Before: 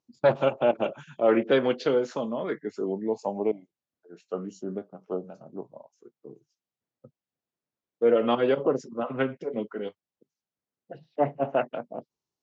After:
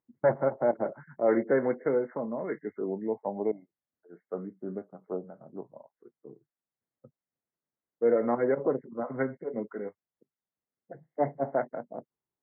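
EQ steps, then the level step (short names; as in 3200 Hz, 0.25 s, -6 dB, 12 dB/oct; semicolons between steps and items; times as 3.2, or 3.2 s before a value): dynamic EQ 1200 Hz, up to -6 dB, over -50 dBFS, Q 5.5; brick-wall FIR low-pass 2200 Hz; -3.0 dB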